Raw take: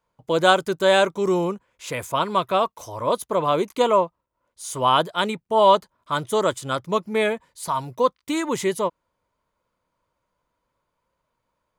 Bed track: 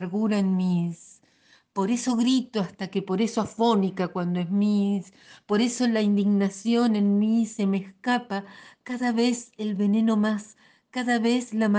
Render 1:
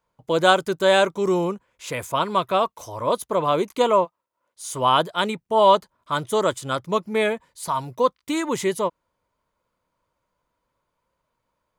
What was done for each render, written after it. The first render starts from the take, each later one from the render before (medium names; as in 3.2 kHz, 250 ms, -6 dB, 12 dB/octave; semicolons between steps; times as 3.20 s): 4.04–4.72 s: high-pass 740 Hz -> 280 Hz 6 dB/octave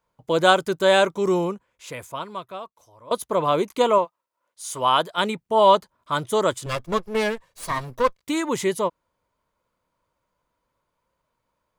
1.35–3.11 s: fade out quadratic, to -20 dB; 3.98–5.18 s: bass shelf 360 Hz -7.5 dB; 6.66–8.21 s: comb filter that takes the minimum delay 1.8 ms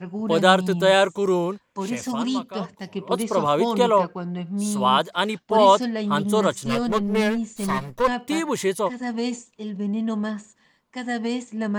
add bed track -3.5 dB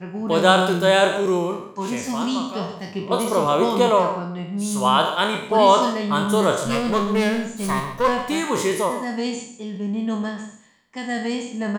spectral sustain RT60 0.54 s; on a send: delay 134 ms -11.5 dB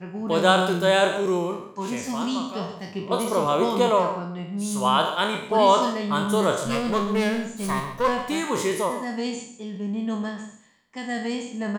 trim -3 dB